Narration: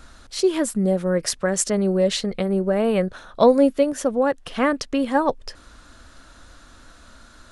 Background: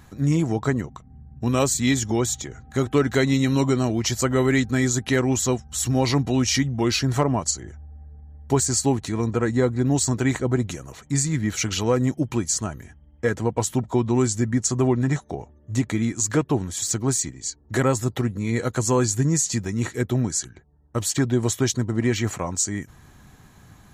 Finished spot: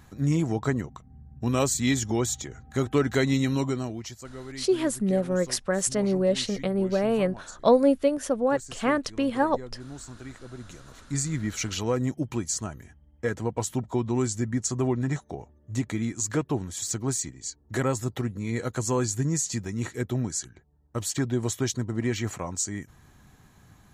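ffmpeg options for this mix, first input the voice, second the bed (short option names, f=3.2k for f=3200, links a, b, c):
-filter_complex "[0:a]adelay=4250,volume=-4dB[a];[1:a]volume=11.5dB,afade=t=out:st=3.37:d=0.82:silence=0.141254,afade=t=in:st=10.55:d=0.68:silence=0.177828[b];[a][b]amix=inputs=2:normalize=0"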